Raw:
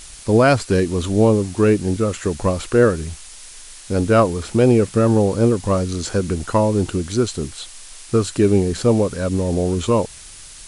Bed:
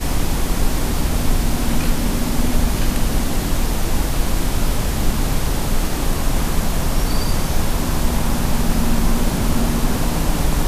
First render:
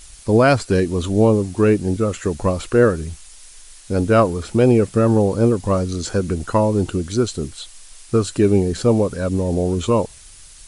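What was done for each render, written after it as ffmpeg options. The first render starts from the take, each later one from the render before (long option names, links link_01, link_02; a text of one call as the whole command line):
ffmpeg -i in.wav -af "afftdn=noise_reduction=6:noise_floor=-39" out.wav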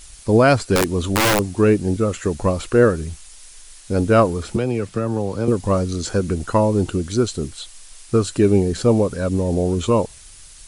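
ffmpeg -i in.wav -filter_complex "[0:a]asettb=1/sr,asplit=3[link_01][link_02][link_03];[link_01]atrim=end=0.754[link_04];[link_02]atrim=start=0.75:end=1.4,asetpts=PTS-STARTPTS,afade=type=in:duration=0.004:curve=qsin,afade=type=out:start_time=0.646:duration=0.004:curve=qsin,aeval=exprs='(mod(3.55*val(0)+1,2)-1)/3.55':channel_layout=same[link_05];[link_03]atrim=start=1.396[link_06];[link_04][link_05]acrossfade=duration=0.004:curve1=hsin:curve2=qsin[link_07];[link_07][link_06]acrossfade=duration=0.004:curve1=qsin:curve2=hsin,asettb=1/sr,asplit=3[link_08][link_09][link_10];[link_08]atrim=end=4.564[link_11];[link_09]atrim=start=4.56:end=5.48,asetpts=PTS-STARTPTS,afade=type=in:duration=0.004:curve=qsin,afade=type=out:start_time=0.916:duration=0.004:curve=qsin,acrossover=split=110|260|880|5700[link_12][link_13][link_14][link_15][link_16];[link_12]acompressor=threshold=-33dB:ratio=3[link_17];[link_13]acompressor=threshold=-29dB:ratio=3[link_18];[link_14]acompressor=threshold=-26dB:ratio=3[link_19];[link_15]acompressor=threshold=-33dB:ratio=3[link_20];[link_16]acompressor=threshold=-52dB:ratio=3[link_21];[link_17][link_18][link_19][link_20][link_21]amix=inputs=5:normalize=0[link_22];[link_10]atrim=start=5.476[link_23];[link_11][link_22]acrossfade=duration=0.004:curve1=hsin:curve2=qsin[link_24];[link_24][link_23]acrossfade=duration=0.004:curve1=qsin:curve2=hsin" out.wav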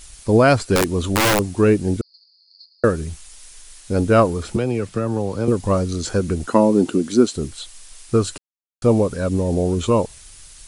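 ffmpeg -i in.wav -filter_complex "[0:a]asettb=1/sr,asplit=3[link_01][link_02][link_03];[link_01]atrim=end=2.014[link_04];[link_02]atrim=start=2.01:end=2.84,asetpts=PTS-STARTPTS,afade=type=in:duration=0.004:curve=qsin,afade=type=out:start_time=0.826:duration=0.004:curve=qsin,asuperpass=centerf=4600:order=8:qfactor=6.1[link_05];[link_03]atrim=start=2.836[link_06];[link_04][link_05]acrossfade=duration=0.004:curve1=hsin:curve2=qsin[link_07];[link_07][link_06]acrossfade=duration=0.004:curve1=qsin:curve2=hsin,asettb=1/sr,asplit=3[link_08][link_09][link_10];[link_08]atrim=end=6.474[link_11];[link_09]atrim=start=6.47:end=7.36,asetpts=PTS-STARTPTS,afade=type=in:duration=0.004:curve=qsin,afade=type=out:start_time=0.886:duration=0.004:curve=qsin,highpass=frequency=240:width_type=q:width=2.2[link_12];[link_10]atrim=start=7.356[link_13];[link_11][link_12]acrossfade=duration=0.004:curve1=hsin:curve2=qsin[link_14];[link_14][link_13]acrossfade=duration=0.004:curve1=qsin:curve2=hsin,asplit=3[link_15][link_16][link_17];[link_15]atrim=end=8.38,asetpts=PTS-STARTPTS,afade=type=out:start_time=8.376:duration=0.004:curve=hsin[link_18];[link_16]atrim=start=8.38:end=8.82,asetpts=PTS-STARTPTS,volume=0[link_19];[link_17]atrim=start=8.82,asetpts=PTS-STARTPTS,afade=type=in:duration=0.004:curve=hsin[link_20];[link_18][link_19][link_20]concat=n=3:v=0:a=1" out.wav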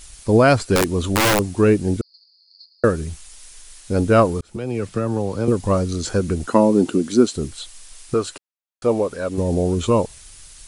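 ffmpeg -i in.wav -filter_complex "[0:a]asettb=1/sr,asplit=3[link_01][link_02][link_03];[link_01]atrim=end=8.144[link_04];[link_02]atrim=start=8.14:end=9.38,asetpts=PTS-STARTPTS,afade=type=in:duration=0.004:curve=qsin,afade=type=out:start_time=1.236:duration=0.004:curve=qsin,bass=frequency=250:gain=-12,treble=frequency=4000:gain=-4[link_05];[link_03]atrim=start=9.376[link_06];[link_04][link_05]acrossfade=duration=0.004:curve1=hsin:curve2=qsin[link_07];[link_07][link_06]acrossfade=duration=0.004:curve1=qsin:curve2=hsin,asplit=2[link_08][link_09];[link_08]atrim=end=4.41,asetpts=PTS-STARTPTS,afade=type=out:start_time=4.406:duration=0.004:curve=hsin[link_10];[link_09]atrim=start=4.41,asetpts=PTS-STARTPTS,afade=type=in:duration=0.44[link_11];[link_10][link_11]concat=n=2:v=0:a=1" out.wav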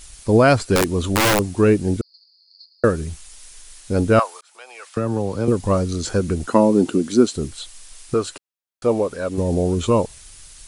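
ffmpeg -i in.wav -filter_complex "[0:a]asettb=1/sr,asplit=3[link_01][link_02][link_03];[link_01]atrim=end=4.194[link_04];[link_02]atrim=start=4.19:end=4.97,asetpts=PTS-STARTPTS,afade=type=in:duration=0.004:curve=qsin,afade=type=out:start_time=0.776:duration=0.004:curve=qsin,highpass=frequency=790:width=0.5412,highpass=frequency=790:width=1.3066[link_05];[link_03]atrim=start=4.966[link_06];[link_04][link_05]acrossfade=duration=0.004:curve1=hsin:curve2=qsin[link_07];[link_07][link_06]acrossfade=duration=0.004:curve1=qsin:curve2=hsin" out.wav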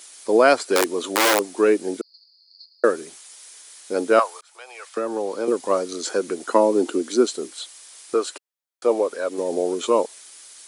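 ffmpeg -i in.wav -af "highpass=frequency=320:width=0.5412,highpass=frequency=320:width=1.3066,bandreject=frequency=2700:width=20" out.wav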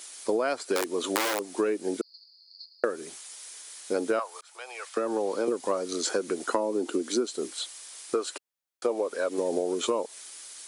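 ffmpeg -i in.wav -af "acompressor=threshold=-23dB:ratio=12" out.wav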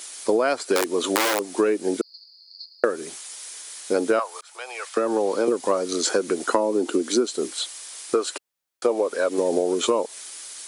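ffmpeg -i in.wav -af "volume=6dB,alimiter=limit=-2dB:level=0:latency=1" out.wav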